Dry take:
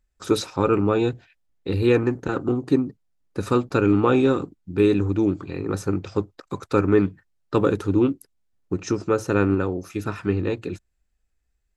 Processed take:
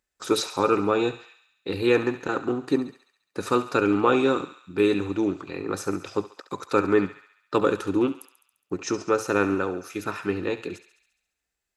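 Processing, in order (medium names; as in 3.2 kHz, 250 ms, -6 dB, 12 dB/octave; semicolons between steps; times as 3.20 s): high-pass 500 Hz 6 dB/octave; on a send: thinning echo 69 ms, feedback 65%, high-pass 790 Hz, level -12 dB; on the sum: trim +2 dB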